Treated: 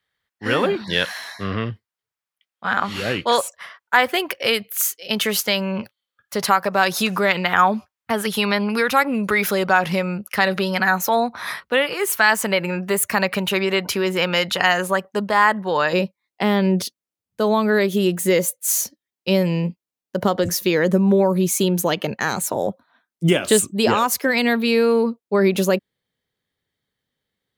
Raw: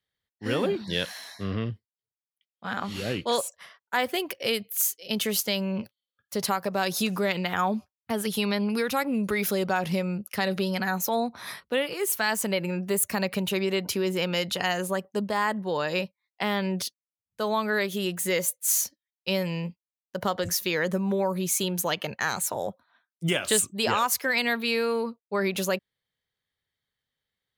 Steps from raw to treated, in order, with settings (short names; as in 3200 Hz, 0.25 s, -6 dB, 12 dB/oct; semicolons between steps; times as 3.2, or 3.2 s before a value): bell 1400 Hz +9 dB 2.2 oct, from 15.93 s 280 Hz; gain +3.5 dB